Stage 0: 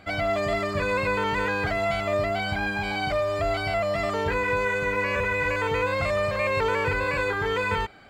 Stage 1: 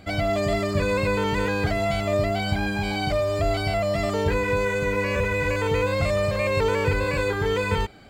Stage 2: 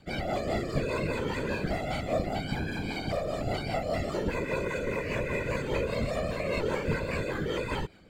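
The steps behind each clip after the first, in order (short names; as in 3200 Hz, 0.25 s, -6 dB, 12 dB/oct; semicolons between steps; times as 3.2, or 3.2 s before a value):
bell 1400 Hz -10 dB 2.6 oct; gain +7 dB
whisperiser; rotary speaker horn 5 Hz; gain -5.5 dB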